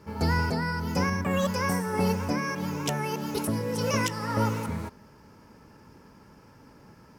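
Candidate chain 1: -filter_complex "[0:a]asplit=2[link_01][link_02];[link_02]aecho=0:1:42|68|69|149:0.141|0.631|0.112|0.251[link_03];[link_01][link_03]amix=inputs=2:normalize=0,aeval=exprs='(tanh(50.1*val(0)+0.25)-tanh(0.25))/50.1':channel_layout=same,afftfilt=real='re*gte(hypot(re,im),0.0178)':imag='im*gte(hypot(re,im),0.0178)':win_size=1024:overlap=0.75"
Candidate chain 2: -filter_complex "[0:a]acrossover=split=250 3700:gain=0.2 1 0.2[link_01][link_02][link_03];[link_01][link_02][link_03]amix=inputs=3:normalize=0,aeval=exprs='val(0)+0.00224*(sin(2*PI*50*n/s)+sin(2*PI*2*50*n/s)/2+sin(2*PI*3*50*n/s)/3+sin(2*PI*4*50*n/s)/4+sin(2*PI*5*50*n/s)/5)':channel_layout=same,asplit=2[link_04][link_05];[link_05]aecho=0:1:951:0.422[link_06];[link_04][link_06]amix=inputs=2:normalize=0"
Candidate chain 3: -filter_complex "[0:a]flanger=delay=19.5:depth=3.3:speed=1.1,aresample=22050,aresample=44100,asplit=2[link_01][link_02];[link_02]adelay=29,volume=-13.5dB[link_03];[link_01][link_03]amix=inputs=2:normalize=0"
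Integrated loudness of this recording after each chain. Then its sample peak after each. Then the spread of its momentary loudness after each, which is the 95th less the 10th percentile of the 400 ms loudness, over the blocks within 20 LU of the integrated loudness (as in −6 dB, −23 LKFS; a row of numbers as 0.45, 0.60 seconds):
−37.0, −31.0, −31.0 LKFS; −29.0, −17.0, −16.0 dBFS; 2, 9, 5 LU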